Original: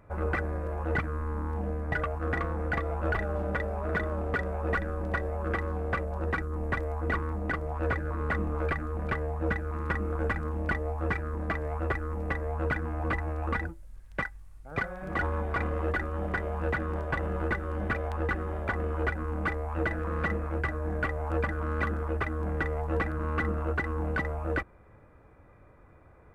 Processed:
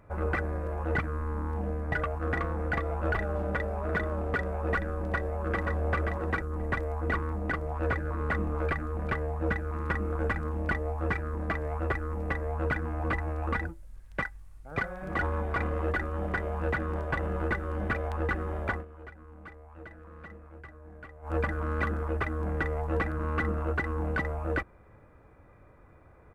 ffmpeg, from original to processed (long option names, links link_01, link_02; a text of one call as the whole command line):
ffmpeg -i in.wav -filter_complex "[0:a]asplit=2[link_01][link_02];[link_02]afade=type=in:start_time=5.03:duration=0.01,afade=type=out:start_time=5.88:duration=0.01,aecho=0:1:530|1060:0.630957|0.0630957[link_03];[link_01][link_03]amix=inputs=2:normalize=0,asplit=3[link_04][link_05][link_06];[link_04]atrim=end=18.85,asetpts=PTS-STARTPTS,afade=type=out:start_time=18.72:duration=0.13:silence=0.141254[link_07];[link_05]atrim=start=18.85:end=21.22,asetpts=PTS-STARTPTS,volume=-17dB[link_08];[link_06]atrim=start=21.22,asetpts=PTS-STARTPTS,afade=type=in:duration=0.13:silence=0.141254[link_09];[link_07][link_08][link_09]concat=n=3:v=0:a=1" out.wav